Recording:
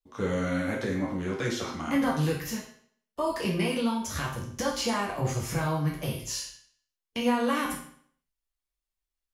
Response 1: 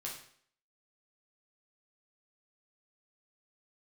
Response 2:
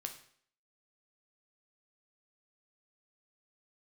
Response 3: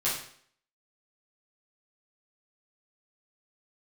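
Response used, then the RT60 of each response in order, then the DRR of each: 1; 0.60, 0.60, 0.60 seconds; −3.5, 4.5, −9.5 decibels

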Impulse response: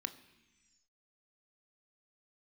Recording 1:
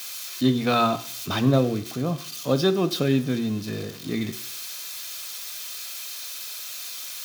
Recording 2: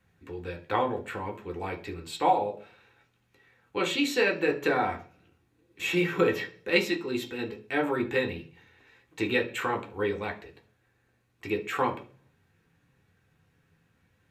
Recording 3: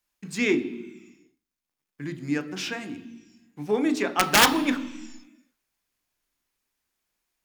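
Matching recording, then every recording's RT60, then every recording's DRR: 3; 0.60, 0.40, 1.1 seconds; 10.5, 1.5, 9.5 decibels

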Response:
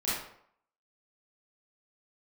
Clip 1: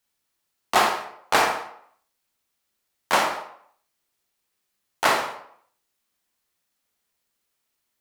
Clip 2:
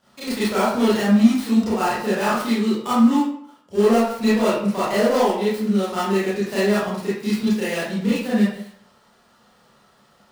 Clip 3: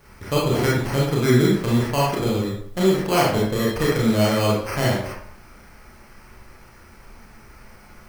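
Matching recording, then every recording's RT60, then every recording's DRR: 2; 0.65, 0.65, 0.65 seconds; 2.5, −11.0, −5.5 decibels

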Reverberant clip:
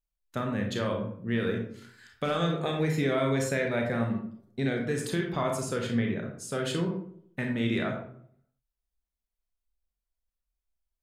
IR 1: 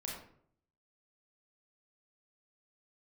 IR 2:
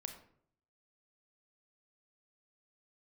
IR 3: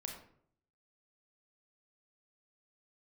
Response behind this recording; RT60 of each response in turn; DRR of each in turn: 3; 0.60, 0.60, 0.60 seconds; −3.0, 5.5, 1.5 decibels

